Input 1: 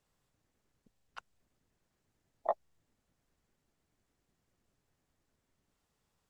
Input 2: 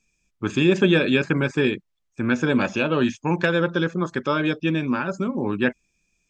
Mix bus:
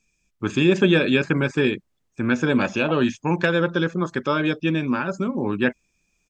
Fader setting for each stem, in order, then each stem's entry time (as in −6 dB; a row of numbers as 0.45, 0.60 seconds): −1.5, +0.5 decibels; 0.40, 0.00 seconds